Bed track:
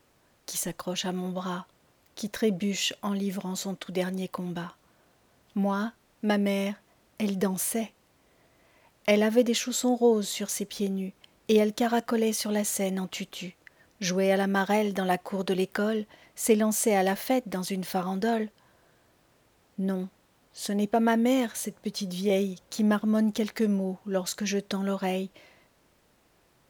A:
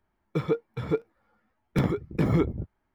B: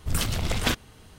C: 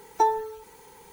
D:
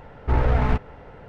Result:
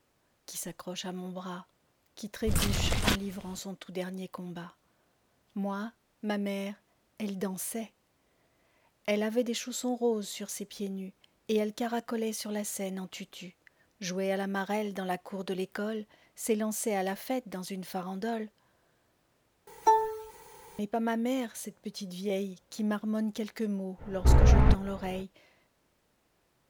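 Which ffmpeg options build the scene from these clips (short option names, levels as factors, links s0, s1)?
-filter_complex "[0:a]volume=0.447[s0];[3:a]equalizer=f=240:t=o:w=0.46:g=-9.5[s1];[4:a]lowshelf=f=470:g=7.5[s2];[s0]asplit=2[s3][s4];[s3]atrim=end=19.674[s5];[s1]atrim=end=1.12,asetpts=PTS-STARTPTS,volume=0.891[s6];[s4]atrim=start=20.786[s7];[2:a]atrim=end=1.18,asetpts=PTS-STARTPTS,volume=0.75,afade=t=in:d=0.004:c=hsin,afade=t=out:st=1.176:d=0.004:c=hsin,adelay=2410[s8];[s2]atrim=end=1.28,asetpts=PTS-STARTPTS,volume=0.447,afade=t=in:d=0.05,afade=t=out:st=1.23:d=0.05,adelay=23970[s9];[s5][s6]acrossfade=d=0.004:c1=hsin:c2=hsin[s10];[s10][s7]acrossfade=d=0.004:c1=hsin:c2=hsin[s11];[s11][s8][s9]amix=inputs=3:normalize=0"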